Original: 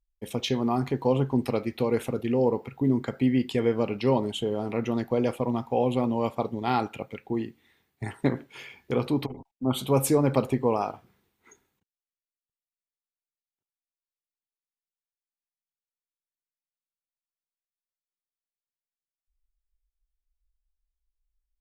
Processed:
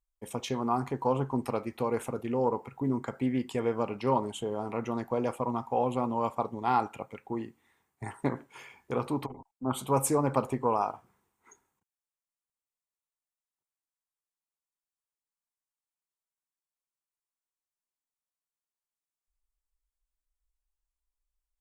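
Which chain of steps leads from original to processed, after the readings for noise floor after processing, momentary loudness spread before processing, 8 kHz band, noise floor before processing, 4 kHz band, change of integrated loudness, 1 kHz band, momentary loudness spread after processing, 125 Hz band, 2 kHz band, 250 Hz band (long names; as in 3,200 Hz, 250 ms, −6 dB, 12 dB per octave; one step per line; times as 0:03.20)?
below −85 dBFS, 9 LU, −0.5 dB, below −85 dBFS, −9.0 dB, −4.0 dB, +1.0 dB, 10 LU, −6.5 dB, −5.0 dB, −6.0 dB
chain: graphic EQ with 10 bands 1,000 Hz +10 dB, 4,000 Hz −6 dB, 8,000 Hz +9 dB
highs frequency-modulated by the lows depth 0.1 ms
level −6.5 dB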